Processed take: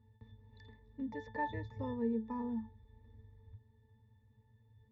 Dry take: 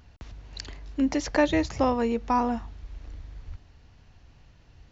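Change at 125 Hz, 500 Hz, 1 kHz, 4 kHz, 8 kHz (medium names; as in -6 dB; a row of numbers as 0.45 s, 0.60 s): -8.5 dB, -15.5 dB, -15.0 dB, under -20 dB, no reading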